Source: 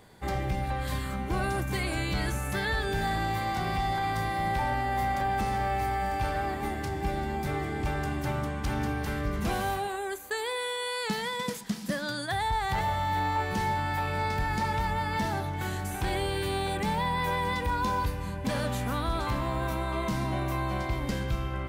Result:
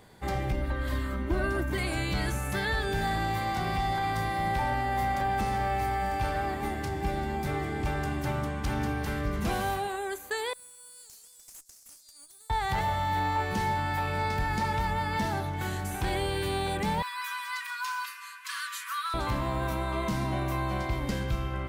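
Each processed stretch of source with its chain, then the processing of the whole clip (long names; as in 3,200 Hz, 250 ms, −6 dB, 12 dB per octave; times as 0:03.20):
0:00.52–0:01.78: parametric band 8,300 Hz −9.5 dB 2.6 octaves + comb filter 3.2 ms, depth 80%
0:10.53–0:12.50: inverse Chebyshev high-pass filter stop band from 2,500 Hz, stop band 50 dB + tube saturation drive 40 dB, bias 0.65
0:17.02–0:19.14: linear-phase brick-wall high-pass 1,000 Hz + notch filter 3,500 Hz, Q 15 + comb filter 5.3 ms, depth 89%
whole clip: no processing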